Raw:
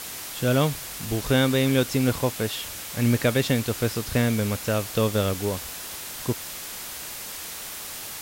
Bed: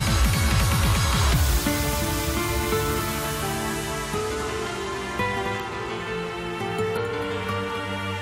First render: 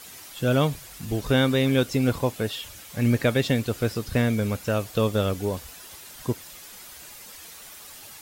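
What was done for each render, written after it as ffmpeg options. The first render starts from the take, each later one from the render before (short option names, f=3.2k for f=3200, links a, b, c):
-af "afftdn=nr=10:nf=-36"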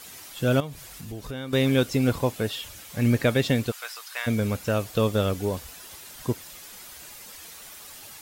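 -filter_complex "[0:a]asettb=1/sr,asplit=3[a][b][c];[a]atrim=end=0.604[d];[b]atrim=start=0.6:end=1.53,asetpts=PTS-STARTPTS,afade=t=in:d=0.004:c=qsin,afade=t=out:st=0.926:d=0.004:c=qsin,acompressor=threshold=-37dB:ratio=2.5:attack=3.2:release=140:knee=1:detection=peak[e];[c]atrim=start=1.526[f];[d][e]acrossfade=d=0.004:c1=hsin:c2=qsin[g];[g][f]acrossfade=d=0.004:c1=qsin:c2=hsin,asplit=3[h][i][j];[h]afade=t=out:st=3.7:d=0.02[k];[i]highpass=f=890:w=0.5412,highpass=f=890:w=1.3066,afade=t=in:st=3.7:d=0.02,afade=t=out:st=4.26:d=0.02[l];[j]afade=t=in:st=4.26:d=0.02[m];[k][l][m]amix=inputs=3:normalize=0"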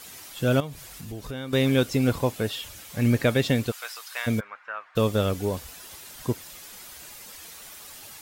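-filter_complex "[0:a]asplit=3[a][b][c];[a]afade=t=out:st=4.39:d=0.02[d];[b]asuperpass=centerf=1400:order=4:qfactor=1.4,afade=t=in:st=4.39:d=0.02,afade=t=out:st=4.95:d=0.02[e];[c]afade=t=in:st=4.95:d=0.02[f];[d][e][f]amix=inputs=3:normalize=0"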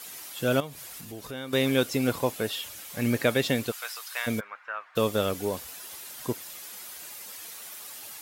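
-af "highpass=f=280:p=1,equalizer=f=12k:w=1.5:g=4.5"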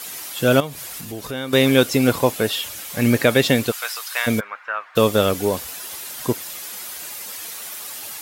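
-af "volume=9dB,alimiter=limit=-2dB:level=0:latency=1"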